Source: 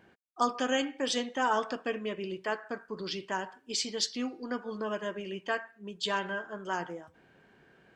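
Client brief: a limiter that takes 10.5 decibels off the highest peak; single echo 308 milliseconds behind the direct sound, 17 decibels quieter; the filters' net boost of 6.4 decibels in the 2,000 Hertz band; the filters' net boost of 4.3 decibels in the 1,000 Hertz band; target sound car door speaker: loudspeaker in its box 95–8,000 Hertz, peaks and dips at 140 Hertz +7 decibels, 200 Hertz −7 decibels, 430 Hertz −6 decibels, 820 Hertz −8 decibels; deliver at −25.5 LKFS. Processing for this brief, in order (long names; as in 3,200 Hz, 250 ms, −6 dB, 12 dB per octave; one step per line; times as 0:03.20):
parametric band 1,000 Hz +7 dB
parametric band 2,000 Hz +6 dB
brickwall limiter −19 dBFS
loudspeaker in its box 95–8,000 Hz, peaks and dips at 140 Hz +7 dB, 200 Hz −7 dB, 430 Hz −6 dB, 820 Hz −8 dB
single-tap delay 308 ms −17 dB
level +8 dB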